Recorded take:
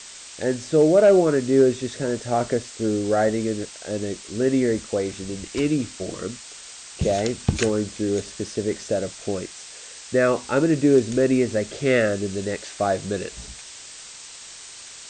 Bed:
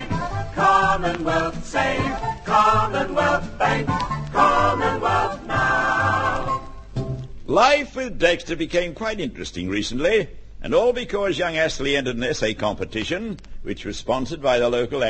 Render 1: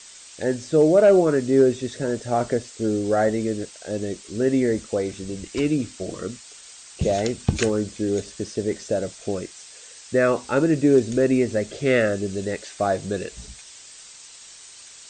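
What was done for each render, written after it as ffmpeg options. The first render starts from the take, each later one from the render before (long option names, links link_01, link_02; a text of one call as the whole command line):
ffmpeg -i in.wav -af "afftdn=noise_reduction=6:noise_floor=-41" out.wav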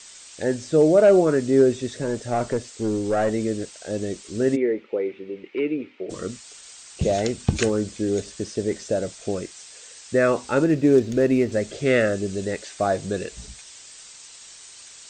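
ffmpeg -i in.wav -filter_complex "[0:a]asettb=1/sr,asplit=3[link_01][link_02][link_03];[link_01]atrim=end=1.914[link_04];[link_02]atrim=start=1.91:end=3.31,asetpts=PTS-STARTPTS,afade=type=in:duration=0.004:curve=qsin,afade=type=out:start_time=1.396:duration=0.004:curve=qsin,aeval=exprs='(tanh(5.01*val(0)+0.2)-tanh(0.2))/5.01':channel_layout=same[link_05];[link_03]atrim=start=3.306[link_06];[link_04][link_05]acrossfade=duration=0.004:curve1=hsin:curve2=qsin[link_07];[link_07][link_06]acrossfade=duration=0.004:curve1=qsin:curve2=hsin,asplit=3[link_08][link_09][link_10];[link_08]afade=type=out:start_time=4.55:duration=0.02[link_11];[link_09]highpass=360,equalizer=frequency=390:width_type=q:width=4:gain=6,equalizer=frequency=680:width_type=q:width=4:gain=-10,equalizer=frequency=1100:width_type=q:width=4:gain=-7,equalizer=frequency=1600:width_type=q:width=4:gain=-8,equalizer=frequency=2300:width_type=q:width=4:gain=4,lowpass=frequency=2500:width=0.5412,lowpass=frequency=2500:width=1.3066,afade=type=in:start_time=4.55:duration=0.02,afade=type=out:start_time=6.09:duration=0.02[link_12];[link_10]afade=type=in:start_time=6.09:duration=0.02[link_13];[link_11][link_12][link_13]amix=inputs=3:normalize=0,asettb=1/sr,asplit=3[link_14][link_15][link_16];[link_14]atrim=end=10.644[link_17];[link_15]atrim=start=10.64:end=11.52,asetpts=PTS-STARTPTS,afade=type=in:duration=0.004:curve=qsin,afade=type=out:start_time=0.876:duration=0.004:curve=qsin,adynamicsmooth=sensitivity=6:basefreq=3700[link_18];[link_16]atrim=start=11.516[link_19];[link_17][link_18]acrossfade=duration=0.004:curve1=hsin:curve2=qsin[link_20];[link_20][link_19]acrossfade=duration=0.004:curve1=qsin:curve2=hsin" out.wav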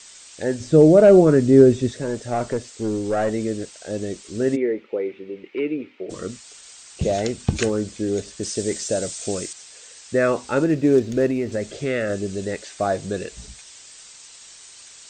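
ffmpeg -i in.wav -filter_complex "[0:a]asettb=1/sr,asplit=3[link_01][link_02][link_03];[link_01]atrim=end=0.604[link_04];[link_02]atrim=start=0.6:end=1.92,asetpts=PTS-STARTPTS,afade=type=in:duration=0.004:curve=qsin,afade=type=out:start_time=1.316:duration=0.004:curve=qsin,lowshelf=frequency=310:gain=11.5[link_05];[link_03]atrim=start=1.916[link_06];[link_04][link_05]acrossfade=duration=0.004:curve1=hsin:curve2=qsin[link_07];[link_07][link_06]acrossfade=duration=0.004:curve1=qsin:curve2=hsin,asettb=1/sr,asplit=3[link_08][link_09][link_10];[link_08]atrim=end=8.434[link_11];[link_09]atrim=start=8.43:end=9.53,asetpts=PTS-STARTPTS,afade=type=in:duration=0.004:curve=qsin,afade=type=out:start_time=1.096:duration=0.004:curve=qsin,aemphasis=mode=production:type=75kf[link_12];[link_10]atrim=start=9.526[link_13];[link_11][link_12]acrossfade=duration=0.004:curve1=hsin:curve2=qsin[link_14];[link_14][link_13]acrossfade=duration=0.004:curve1=qsin:curve2=hsin,asettb=1/sr,asplit=3[link_15][link_16][link_17];[link_15]atrim=end=11.304[link_18];[link_16]atrim=start=11.3:end=12.1,asetpts=PTS-STARTPTS,afade=type=in:duration=0.004:curve=qsin,afade=type=out:start_time=0.796:duration=0.004:curve=qsin,acompressor=threshold=-20dB:ratio=3:attack=3.2:release=140:knee=1:detection=peak[link_19];[link_17]atrim=start=12.096[link_20];[link_18][link_19]acrossfade=duration=0.004:curve1=hsin:curve2=qsin[link_21];[link_21][link_20]acrossfade=duration=0.004:curve1=qsin:curve2=hsin" out.wav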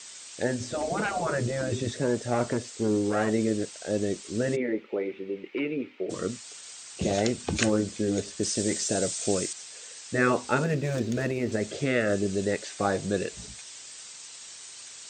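ffmpeg -i in.wav -af "highpass=91,afftfilt=real='re*lt(hypot(re,im),0.631)':imag='im*lt(hypot(re,im),0.631)':win_size=1024:overlap=0.75" out.wav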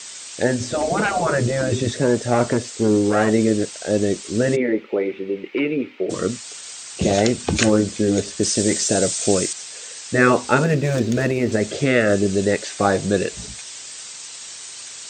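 ffmpeg -i in.wav -af "volume=8.5dB,alimiter=limit=-2dB:level=0:latency=1" out.wav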